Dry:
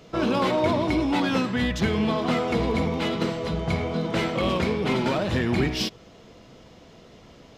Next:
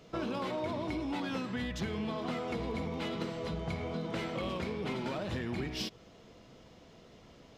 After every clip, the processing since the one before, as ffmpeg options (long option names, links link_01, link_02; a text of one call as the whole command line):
ffmpeg -i in.wav -af "acompressor=threshold=-26dB:ratio=4,volume=-7dB" out.wav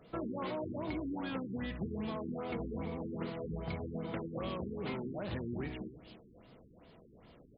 ffmpeg -i in.wav -filter_complex "[0:a]asplit=2[link_01][link_02];[link_02]adelay=303.2,volume=-15dB,highshelf=frequency=4000:gain=-6.82[link_03];[link_01][link_03]amix=inputs=2:normalize=0,afftfilt=real='re*lt(b*sr/1024,410*pow(5200/410,0.5+0.5*sin(2*PI*2.5*pts/sr)))':imag='im*lt(b*sr/1024,410*pow(5200/410,0.5+0.5*sin(2*PI*2.5*pts/sr)))':win_size=1024:overlap=0.75,volume=-2.5dB" out.wav